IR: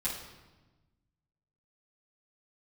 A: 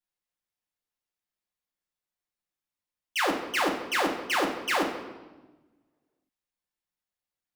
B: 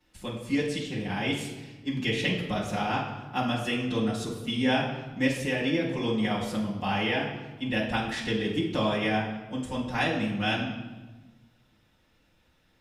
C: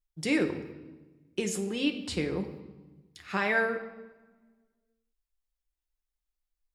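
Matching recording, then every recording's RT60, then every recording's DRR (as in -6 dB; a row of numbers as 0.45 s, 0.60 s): B; 1.2 s, 1.2 s, 1.2 s; -2.0 dB, -11.0 dB, 3.5 dB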